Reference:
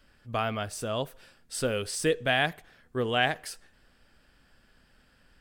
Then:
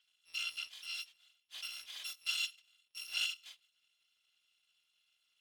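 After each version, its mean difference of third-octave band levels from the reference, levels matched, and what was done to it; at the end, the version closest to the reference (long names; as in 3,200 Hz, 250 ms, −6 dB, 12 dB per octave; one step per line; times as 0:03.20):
17.0 dB: samples in bit-reversed order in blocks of 256 samples
resonant band-pass 3,200 Hz, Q 3.7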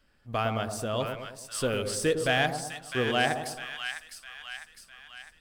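7.0 dB: leveller curve on the samples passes 1
on a send: echo with a time of its own for lows and highs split 1,100 Hz, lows 108 ms, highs 655 ms, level −6 dB
on the sum: level −3.5 dB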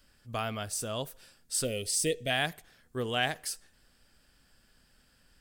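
3.5 dB: gain on a spectral selection 0:01.64–0:02.30, 750–1,800 Hz −16 dB
bass and treble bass +2 dB, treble +11 dB
level −5 dB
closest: third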